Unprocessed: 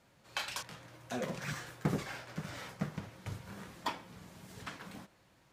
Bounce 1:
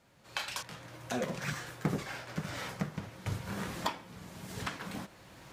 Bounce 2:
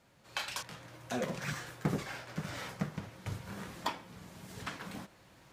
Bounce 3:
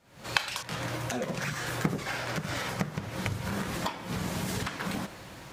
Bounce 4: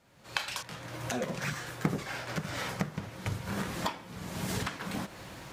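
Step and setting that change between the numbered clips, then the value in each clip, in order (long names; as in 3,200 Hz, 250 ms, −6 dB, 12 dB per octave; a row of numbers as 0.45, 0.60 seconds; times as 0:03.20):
camcorder AGC, rising by: 13, 5.3, 84, 34 dB per second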